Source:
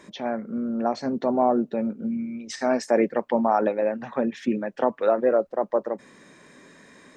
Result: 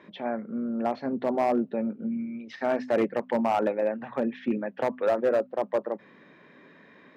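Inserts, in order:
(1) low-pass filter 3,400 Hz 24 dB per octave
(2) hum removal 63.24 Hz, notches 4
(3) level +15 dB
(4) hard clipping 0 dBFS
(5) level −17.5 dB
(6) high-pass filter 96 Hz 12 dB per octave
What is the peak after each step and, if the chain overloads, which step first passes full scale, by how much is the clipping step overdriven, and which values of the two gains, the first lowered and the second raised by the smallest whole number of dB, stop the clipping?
−8.0, −8.0, +7.0, 0.0, −17.5, −14.5 dBFS
step 3, 7.0 dB
step 3 +8 dB, step 5 −10.5 dB

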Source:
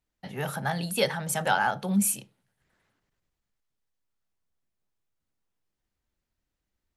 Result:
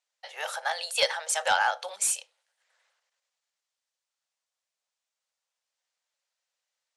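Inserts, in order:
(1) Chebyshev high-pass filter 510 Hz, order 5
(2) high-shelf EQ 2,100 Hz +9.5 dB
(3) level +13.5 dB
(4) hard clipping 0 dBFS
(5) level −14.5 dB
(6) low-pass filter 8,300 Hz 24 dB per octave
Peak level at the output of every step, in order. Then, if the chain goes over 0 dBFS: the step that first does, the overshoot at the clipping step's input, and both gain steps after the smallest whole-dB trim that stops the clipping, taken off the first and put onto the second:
−11.5, −4.0, +9.5, 0.0, −14.5, −13.0 dBFS
step 3, 9.5 dB
step 3 +3.5 dB, step 5 −4.5 dB

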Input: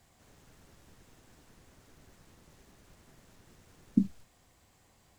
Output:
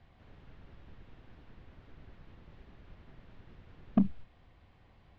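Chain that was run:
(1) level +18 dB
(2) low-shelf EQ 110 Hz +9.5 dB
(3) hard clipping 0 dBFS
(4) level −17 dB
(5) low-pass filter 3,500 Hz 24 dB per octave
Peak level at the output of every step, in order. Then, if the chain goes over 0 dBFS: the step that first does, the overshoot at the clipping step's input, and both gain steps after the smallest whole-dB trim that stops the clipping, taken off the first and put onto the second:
+7.0, +9.0, 0.0, −17.0, −16.5 dBFS
step 1, 9.0 dB
step 1 +9 dB, step 4 −8 dB

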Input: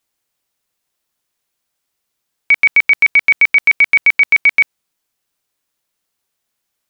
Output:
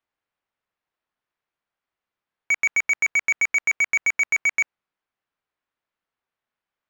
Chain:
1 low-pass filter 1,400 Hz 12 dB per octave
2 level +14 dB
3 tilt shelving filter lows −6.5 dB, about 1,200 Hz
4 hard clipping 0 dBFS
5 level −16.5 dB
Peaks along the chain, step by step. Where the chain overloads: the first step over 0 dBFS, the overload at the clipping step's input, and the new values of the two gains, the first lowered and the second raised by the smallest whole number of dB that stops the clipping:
−10.5, +3.5, +5.0, 0.0, −16.5 dBFS
step 2, 5.0 dB
step 2 +9 dB, step 5 −11.5 dB

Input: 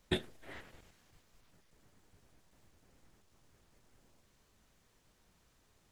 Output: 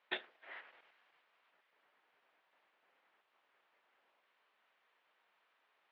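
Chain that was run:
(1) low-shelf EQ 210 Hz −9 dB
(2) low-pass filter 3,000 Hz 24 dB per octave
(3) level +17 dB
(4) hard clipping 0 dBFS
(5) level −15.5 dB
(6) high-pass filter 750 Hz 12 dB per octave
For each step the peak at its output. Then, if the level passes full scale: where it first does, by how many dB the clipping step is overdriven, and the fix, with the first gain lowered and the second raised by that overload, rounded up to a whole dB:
−21.0, −22.0, −5.0, −5.0, −20.5, −22.0 dBFS
no step passes full scale

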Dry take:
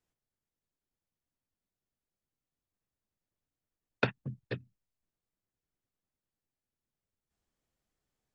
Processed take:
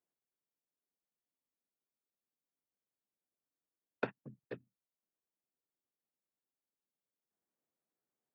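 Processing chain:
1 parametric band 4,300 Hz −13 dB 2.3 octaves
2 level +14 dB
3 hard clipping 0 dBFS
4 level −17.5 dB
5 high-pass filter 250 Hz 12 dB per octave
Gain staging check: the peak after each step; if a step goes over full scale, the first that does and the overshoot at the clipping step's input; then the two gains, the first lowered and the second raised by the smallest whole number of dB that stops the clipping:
−15.5, −1.5, −1.5, −19.0, −19.5 dBFS
no step passes full scale

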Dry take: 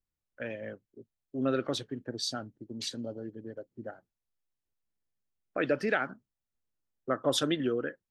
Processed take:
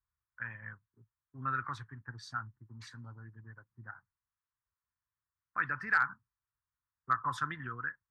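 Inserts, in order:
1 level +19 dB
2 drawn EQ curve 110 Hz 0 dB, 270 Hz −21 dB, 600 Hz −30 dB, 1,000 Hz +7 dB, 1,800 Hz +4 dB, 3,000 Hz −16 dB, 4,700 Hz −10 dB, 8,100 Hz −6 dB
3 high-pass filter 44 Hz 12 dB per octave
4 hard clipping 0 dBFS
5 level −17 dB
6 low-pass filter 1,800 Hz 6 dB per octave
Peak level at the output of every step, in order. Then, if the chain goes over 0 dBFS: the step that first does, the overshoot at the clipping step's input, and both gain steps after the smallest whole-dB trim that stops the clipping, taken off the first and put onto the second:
+4.0, +5.0, +5.0, 0.0, −17.0, −18.0 dBFS
step 1, 5.0 dB
step 1 +14 dB, step 5 −12 dB

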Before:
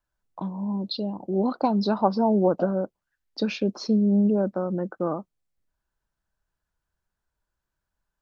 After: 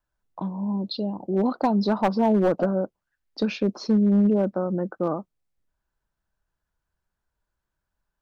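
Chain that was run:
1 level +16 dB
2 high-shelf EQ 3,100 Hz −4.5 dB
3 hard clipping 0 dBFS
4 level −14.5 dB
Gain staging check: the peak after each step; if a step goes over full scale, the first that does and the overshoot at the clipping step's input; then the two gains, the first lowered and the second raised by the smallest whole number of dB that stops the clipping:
+8.5, +8.5, 0.0, −14.5 dBFS
step 1, 8.5 dB
step 1 +7 dB, step 4 −5.5 dB

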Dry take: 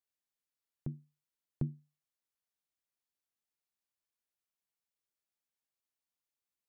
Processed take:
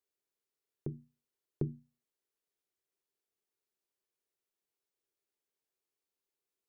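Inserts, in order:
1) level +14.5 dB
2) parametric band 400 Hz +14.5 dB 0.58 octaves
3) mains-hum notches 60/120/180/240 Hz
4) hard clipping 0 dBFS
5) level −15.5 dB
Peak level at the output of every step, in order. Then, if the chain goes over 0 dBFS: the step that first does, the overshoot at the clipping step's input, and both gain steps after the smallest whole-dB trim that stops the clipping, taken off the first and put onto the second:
−6.5, −3.0, −3.5, −3.5, −19.0 dBFS
no step passes full scale

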